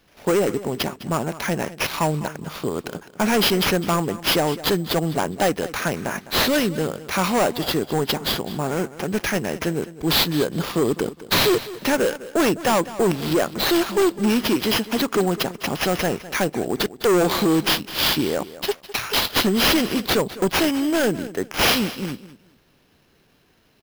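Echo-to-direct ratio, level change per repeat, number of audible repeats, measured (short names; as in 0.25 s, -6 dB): -16.0 dB, -12.5 dB, 2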